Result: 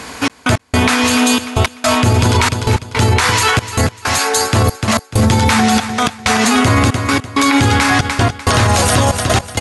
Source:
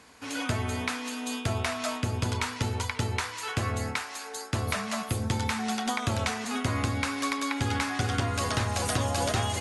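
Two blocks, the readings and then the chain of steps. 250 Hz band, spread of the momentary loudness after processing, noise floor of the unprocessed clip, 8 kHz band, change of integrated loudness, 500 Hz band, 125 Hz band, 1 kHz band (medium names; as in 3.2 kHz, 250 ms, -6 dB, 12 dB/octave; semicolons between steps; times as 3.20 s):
+17.0 dB, 5 LU, -41 dBFS, +16.5 dB, +16.5 dB, +16.0 dB, +15.5 dB, +16.5 dB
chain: trance gate "xxx..x..xxxx" 163 bpm -60 dB; feedback delay 297 ms, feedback 27%, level -14.5 dB; loudness maximiser +27 dB; trim -2.5 dB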